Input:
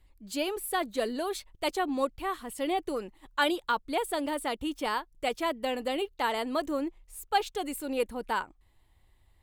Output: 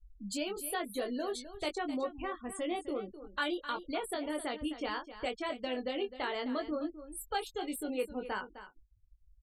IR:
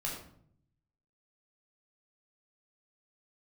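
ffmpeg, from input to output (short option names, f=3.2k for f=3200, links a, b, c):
-filter_complex "[0:a]afftfilt=real='re*gte(hypot(re,im),0.0112)':imag='im*gte(hypot(re,im),0.0112)':win_size=1024:overlap=0.75,equalizer=f=940:w=3:g=-6.5,acompressor=threshold=-48dB:ratio=2,asplit=2[a][b];[b]adelay=20,volume=-5dB[c];[a][c]amix=inputs=2:normalize=0,asplit=2[d][e];[e]aecho=0:1:258:0.224[f];[d][f]amix=inputs=2:normalize=0,volume=5dB"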